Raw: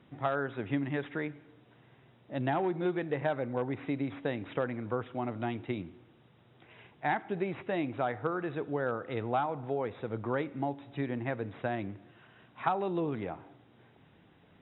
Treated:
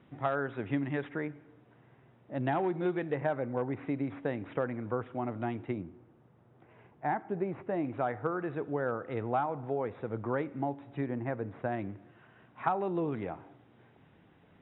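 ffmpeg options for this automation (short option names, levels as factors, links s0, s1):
-af "asetnsamples=n=441:p=0,asendcmd='1.09 lowpass f 2000;2.46 lowpass f 3200;3.15 lowpass f 2100;5.73 lowpass f 1300;7.85 lowpass f 2100;11.04 lowpass f 1600;11.72 lowpass f 2200;13.01 lowpass f 2900',lowpass=3100"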